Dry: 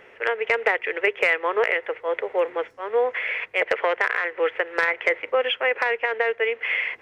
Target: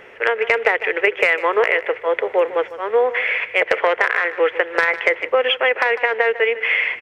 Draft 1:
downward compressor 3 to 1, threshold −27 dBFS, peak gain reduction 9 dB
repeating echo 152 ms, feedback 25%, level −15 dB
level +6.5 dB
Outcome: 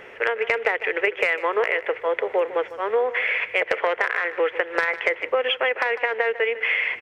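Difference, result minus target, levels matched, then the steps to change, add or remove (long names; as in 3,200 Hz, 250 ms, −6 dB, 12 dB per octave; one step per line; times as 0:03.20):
downward compressor: peak gain reduction +5.5 dB
change: downward compressor 3 to 1, threshold −18.5 dBFS, peak gain reduction 3 dB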